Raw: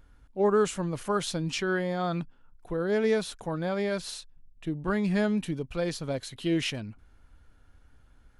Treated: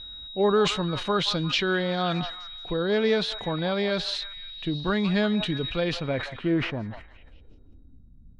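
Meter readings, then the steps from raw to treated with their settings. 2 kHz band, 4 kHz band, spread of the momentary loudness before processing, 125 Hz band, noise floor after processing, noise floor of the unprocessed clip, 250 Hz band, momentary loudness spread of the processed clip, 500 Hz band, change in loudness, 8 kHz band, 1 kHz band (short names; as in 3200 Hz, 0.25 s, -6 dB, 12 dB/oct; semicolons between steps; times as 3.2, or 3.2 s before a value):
+5.0 dB, +10.0 dB, 12 LU, +3.0 dB, -51 dBFS, -59 dBFS, +2.5 dB, 11 LU, +2.5 dB, +3.0 dB, -4.0 dB, +3.5 dB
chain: in parallel at -2.5 dB: compressor, threshold -33 dBFS, peak gain reduction 13.5 dB; on the sum: whine 3800 Hz -46 dBFS; low-pass sweep 3800 Hz -> 190 Hz, 5.69–8.15; delay with a stepping band-pass 0.175 s, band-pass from 920 Hz, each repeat 0.7 oct, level -10 dB; sustainer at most 88 dB/s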